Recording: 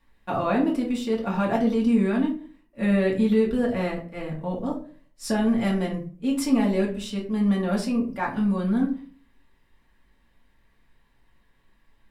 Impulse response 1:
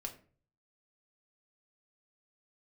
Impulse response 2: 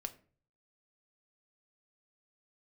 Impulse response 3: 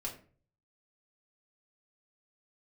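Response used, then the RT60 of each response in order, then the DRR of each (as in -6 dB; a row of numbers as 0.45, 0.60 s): 3; 0.45, 0.45, 0.45 s; 2.0, 7.0, -3.5 dB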